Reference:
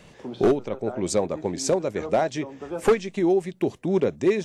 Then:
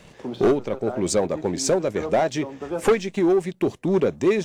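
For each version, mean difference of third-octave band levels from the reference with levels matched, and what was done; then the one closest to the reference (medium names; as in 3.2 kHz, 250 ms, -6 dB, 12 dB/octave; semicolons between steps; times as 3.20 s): 1.5 dB: waveshaping leveller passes 1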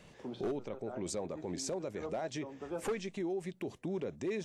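3.5 dB: peak limiter -22 dBFS, peak gain reduction 10 dB; trim -7.5 dB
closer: first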